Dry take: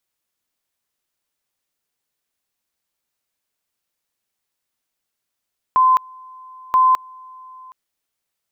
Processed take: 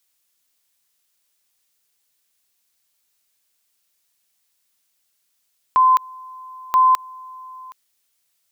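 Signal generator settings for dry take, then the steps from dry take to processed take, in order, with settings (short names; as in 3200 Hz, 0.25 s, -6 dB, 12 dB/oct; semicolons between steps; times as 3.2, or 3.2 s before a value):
two-level tone 1030 Hz -10 dBFS, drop 27 dB, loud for 0.21 s, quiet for 0.77 s, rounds 2
high shelf 2100 Hz +11.5 dB; limiter -10 dBFS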